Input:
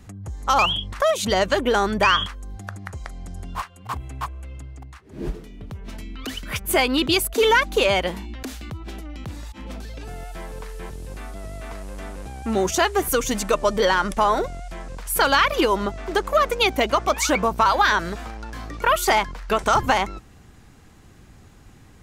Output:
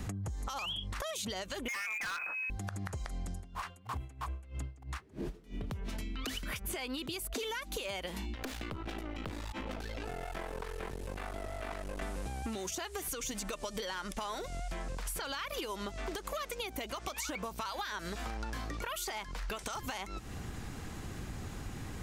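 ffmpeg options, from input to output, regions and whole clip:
ffmpeg -i in.wav -filter_complex "[0:a]asettb=1/sr,asplit=3[link_01][link_02][link_03];[link_01]atrim=end=1.684[link_04];[link_02]atrim=start=1.68:end=2.5,asetpts=PTS-STARTPTS,afade=type=in:duration=0.004:curve=qsin,afade=type=out:start_time=0.816:duration=0.004:curve=qsin,lowpass=frequency=2200:width_type=q:width=0.5098,lowpass=frequency=2200:width_type=q:width=0.6013,lowpass=frequency=2200:width_type=q:width=0.9,lowpass=frequency=2200:width_type=q:width=2.563,afreqshift=-2600,acrusher=bits=9:mode=log:mix=0:aa=0.000001,asoftclip=type=hard:threshold=-20dB[link_05];[link_03]atrim=start=2.496[link_06];[link_04][link_05]acrossfade=duration=0.004:curve1=hsin:curve2=qsin[link_07];[link_07][link_06]acrossfade=duration=0.004:curve1=qsin:curve2=hsin,asettb=1/sr,asplit=3[link_08][link_09][link_10];[link_08]atrim=end=3.344[link_11];[link_09]atrim=start=3.34:end=5.64,asetpts=PTS-STARTPTS,afade=type=in:duration=0.004:curve=qsin,afade=type=out:start_time=2.296:duration=0.004:curve=qsin,acompressor=threshold=-31dB:ratio=2:attack=3.2:release=140:knee=1:detection=peak,aeval=exprs='val(0)*pow(10,-23*(0.5-0.5*cos(2*PI*3.1*n/s))/20)':channel_layout=same[link_12];[link_10]atrim=start=5.636[link_13];[link_11][link_12]acrossfade=duration=0.004:curve1=hsin:curve2=qsin[link_14];[link_14][link_13]acrossfade=duration=0.004:curve1=qsin:curve2=hsin,asettb=1/sr,asplit=3[link_15][link_16][link_17];[link_15]atrim=end=8.354[link_18];[link_16]atrim=start=8.35:end=12.02,asetpts=PTS-STARTPTS,afade=type=in:duration=0.004:curve=qsin,afade=type=out:start_time=3.666:duration=0.004:curve=qsin,aeval=exprs='clip(val(0),-1,0.00944)':channel_layout=same,bass=frequency=250:gain=-7,treble=frequency=4000:gain=-7[link_19];[link_17]atrim=start=12.016[link_20];[link_18][link_19]acrossfade=duration=0.004:curve1=hsin:curve2=qsin[link_21];[link_21][link_20]acrossfade=duration=0.004:curve1=qsin:curve2=hsin,acrossover=split=2300|7900[link_22][link_23][link_24];[link_22]acompressor=threshold=-33dB:ratio=4[link_25];[link_23]acompressor=threshold=-34dB:ratio=4[link_26];[link_24]acompressor=threshold=-40dB:ratio=4[link_27];[link_25][link_26][link_27]amix=inputs=3:normalize=0,alimiter=limit=-23dB:level=0:latency=1:release=95,acompressor=threshold=-44dB:ratio=6,volume=7.5dB" out.wav

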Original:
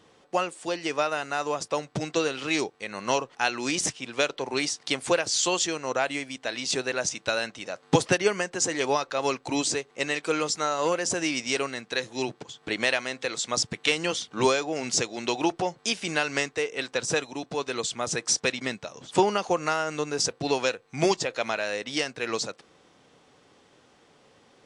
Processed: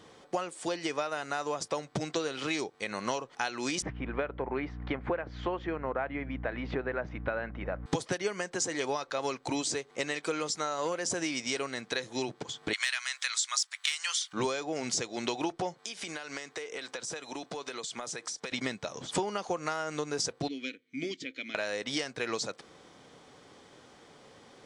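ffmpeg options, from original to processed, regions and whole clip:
ffmpeg -i in.wav -filter_complex "[0:a]asettb=1/sr,asplit=3[link_01][link_02][link_03];[link_01]atrim=end=3.824[link_04];[link_02]atrim=start=3.82:end=7.86,asetpts=PTS-STARTPTS,afade=type=in:duration=0.004:curve=qsin,afade=type=out:start_time=4.036:duration=0.004:curve=qsin,lowpass=frequency=2000:width=0.5412,lowpass=frequency=2000:width=1.3066,aeval=exprs='val(0)+0.00891*(sin(2*PI*60*n/s)+sin(2*PI*2*60*n/s)/2+sin(2*PI*3*60*n/s)/3+sin(2*PI*4*60*n/s)/4+sin(2*PI*5*60*n/s)/5)':channel_layout=same[link_05];[link_03]atrim=start=7.856[link_06];[link_04][link_05]acrossfade=duration=0.004:curve1=hsin:curve2=qsin[link_07];[link_07][link_06]acrossfade=duration=0.004:curve1=qsin:curve2=hsin,asettb=1/sr,asplit=3[link_08][link_09][link_10];[link_08]atrim=end=12.734[link_11];[link_09]atrim=start=12.73:end=14.33,asetpts=PTS-STARTPTS,afade=type=in:duration=0.004:curve=qsin,afade=type=out:start_time=1.596:duration=0.004:curve=qsin,highpass=frequency=1200:width=0.5412,highpass=frequency=1200:width=1.3066,highshelf=frequency=6500:gain=9.5,acontrast=50[link_12];[link_10]atrim=start=14.326[link_13];[link_11][link_12]acrossfade=duration=0.004:curve1=hsin:curve2=qsin[link_14];[link_14][link_13]acrossfade=duration=0.004:curve1=qsin:curve2=hsin,asettb=1/sr,asplit=3[link_15][link_16][link_17];[link_15]atrim=end=15.744[link_18];[link_16]atrim=start=15.74:end=18.52,asetpts=PTS-STARTPTS,afade=type=in:duration=0.004:curve=qsin,afade=type=out:start_time=2.776:duration=0.004:curve=qsin,highpass=120,lowshelf=frequency=330:gain=-7.5,acompressor=threshold=-37dB:ratio=20:attack=3.2:release=140:knee=1:detection=peak[link_19];[link_17]atrim=start=18.516[link_20];[link_18][link_19]acrossfade=duration=0.004:curve1=hsin:curve2=qsin[link_21];[link_21][link_20]acrossfade=duration=0.004:curve1=qsin:curve2=hsin,asettb=1/sr,asplit=3[link_22][link_23][link_24];[link_22]atrim=end=20.484[link_25];[link_23]atrim=start=20.48:end=21.55,asetpts=PTS-STARTPTS,afade=type=in:duration=0.004:curve=qsin,afade=type=out:start_time=1.066:duration=0.004:curve=qsin,asplit=3[link_26][link_27][link_28];[link_26]bandpass=frequency=270:width_type=q:width=8,volume=0dB[link_29];[link_27]bandpass=frequency=2290:width_type=q:width=8,volume=-6dB[link_30];[link_28]bandpass=frequency=3010:width_type=q:width=8,volume=-9dB[link_31];[link_29][link_30][link_31]amix=inputs=3:normalize=0,highshelf=frequency=4700:gain=7[link_32];[link_24]atrim=start=21.546[link_33];[link_25][link_32]acrossfade=duration=0.004:curve1=hsin:curve2=qsin[link_34];[link_34][link_33]acrossfade=duration=0.004:curve1=qsin:curve2=hsin,bandreject=frequency=2700:width=14,acompressor=threshold=-34dB:ratio=4,volume=3.5dB" out.wav

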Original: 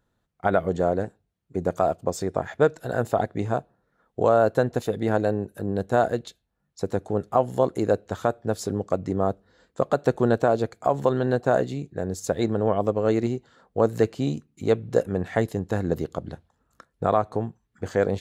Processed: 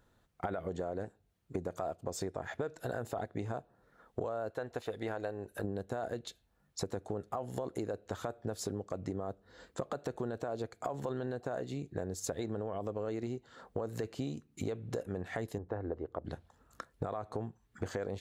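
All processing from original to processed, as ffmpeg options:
ffmpeg -i in.wav -filter_complex "[0:a]asettb=1/sr,asplit=3[link_01][link_02][link_03];[link_01]atrim=end=4.504[link_04];[link_02]atrim=start=4.5:end=5.64,asetpts=PTS-STARTPTS,afade=type=in:duration=0.004:curve=qsin,afade=type=out:start_time=1.136:duration=0.004:curve=qsin,equalizer=frequency=170:width_type=o:width=2.6:gain=-10.5,acrossover=split=3900[link_05][link_06];[link_06]acompressor=threshold=-54dB:ratio=4:attack=1:release=60[link_07];[link_05][link_07]amix=inputs=2:normalize=0[link_08];[link_03]atrim=start=5.636[link_09];[link_04][link_08]acrossfade=duration=0.004:curve1=hsin:curve2=qsin[link_10];[link_10][link_09]acrossfade=duration=0.004:curve1=qsin:curve2=hsin,asettb=1/sr,asplit=3[link_11][link_12][link_13];[link_11]atrim=end=15.584[link_14];[link_12]atrim=start=15.58:end=16.25,asetpts=PTS-STARTPTS,afade=type=in:duration=0.004:curve=qsin,afade=type=out:start_time=0.666:duration=0.004:curve=qsin,lowpass=1200,equalizer=frequency=170:width=1.6:gain=-14,bandreject=frequency=60:width_type=h:width=6,bandreject=frequency=120:width_type=h:width=6,bandreject=frequency=180:width_type=h:width=6[link_15];[link_13]atrim=start=16.246[link_16];[link_14][link_15]acrossfade=duration=0.004:curve1=hsin:curve2=qsin[link_17];[link_17][link_16]acrossfade=duration=0.004:curve1=qsin:curve2=hsin,equalizer=frequency=170:width=1.5:gain=-3.5,alimiter=limit=-16.5dB:level=0:latency=1:release=27,acompressor=threshold=-39dB:ratio=8,volume=4.5dB" out.wav

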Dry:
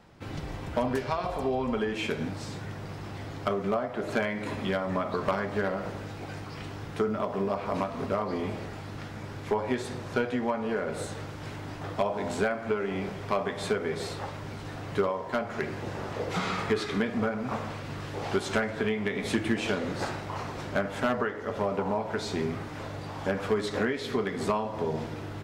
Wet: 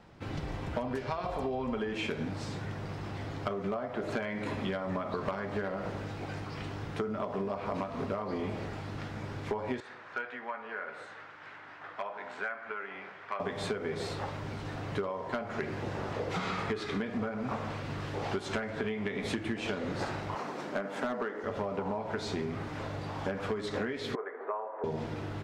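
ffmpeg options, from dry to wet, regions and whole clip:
ffmpeg -i in.wav -filter_complex "[0:a]asettb=1/sr,asplit=3[link_01][link_02][link_03];[link_01]atrim=end=9.804[link_04];[link_02]atrim=start=9.8:end=13.4,asetpts=PTS-STARTPTS,afade=type=in:duration=0.004:curve=qsin,afade=type=out:start_time=3.596:duration=0.004:curve=qsin,bandpass=frequency=1600:width_type=q:width=1.6,asoftclip=type=hard:threshold=-23dB[link_05];[link_03]atrim=start=13.396[link_06];[link_04][link_05]acrossfade=duration=0.004:curve1=hsin:curve2=qsin[link_07];[link_07][link_06]acrossfade=duration=0.004:curve1=qsin:curve2=hsin,asettb=1/sr,asplit=3[link_08][link_09][link_10];[link_08]atrim=end=20.354[link_11];[link_09]atrim=start=20.35:end=21.44,asetpts=PTS-STARTPTS,afade=type=in:duration=0.004:curve=qsin,afade=type=out:start_time=1.086:duration=0.004:curve=qsin,highpass=frequency=190:width=0.5412,highpass=frequency=190:width=1.3066,equalizer=frequency=3200:width_type=o:width=1.5:gain=-3.5,aeval=exprs='clip(val(0),-1,0.0841)':channel_layout=same[link_12];[link_10]atrim=start=21.436[link_13];[link_11][link_12]acrossfade=duration=0.004:curve1=hsin:curve2=qsin[link_14];[link_14][link_13]acrossfade=duration=0.004:curve1=qsin:curve2=hsin,asettb=1/sr,asplit=3[link_15][link_16][link_17];[link_15]atrim=end=24.154[link_18];[link_16]atrim=start=24.15:end=24.84,asetpts=PTS-STARTPTS,afade=type=in:duration=0.004:curve=qsin,afade=type=out:start_time=0.686:duration=0.004:curve=qsin,asuperpass=centerf=850:order=8:qfactor=0.65,equalizer=frequency=650:width_type=o:width=3:gain=-4.5[link_19];[link_17]atrim=start=24.836[link_20];[link_18][link_19]acrossfade=duration=0.004:curve1=hsin:curve2=qsin[link_21];[link_21][link_20]acrossfade=duration=0.004:curve1=qsin:curve2=hsin,highshelf=frequency=9100:gain=-11.5,acompressor=threshold=-30dB:ratio=6" out.wav

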